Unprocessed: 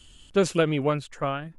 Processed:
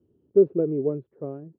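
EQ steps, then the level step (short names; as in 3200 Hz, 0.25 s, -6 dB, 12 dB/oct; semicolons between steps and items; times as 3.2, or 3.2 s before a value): HPF 96 Hz 24 dB/oct; synth low-pass 400 Hz, resonance Q 4.9; air absorption 240 m; -6.5 dB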